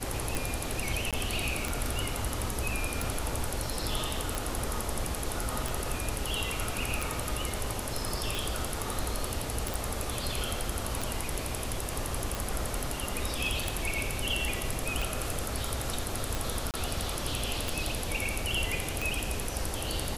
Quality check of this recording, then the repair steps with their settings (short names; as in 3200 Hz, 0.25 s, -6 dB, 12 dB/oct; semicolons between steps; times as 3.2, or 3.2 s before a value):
tick 45 rpm
1.11–1.13 gap 17 ms
9.74 pop
16.71–16.74 gap 28 ms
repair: de-click; interpolate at 1.11, 17 ms; interpolate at 16.71, 28 ms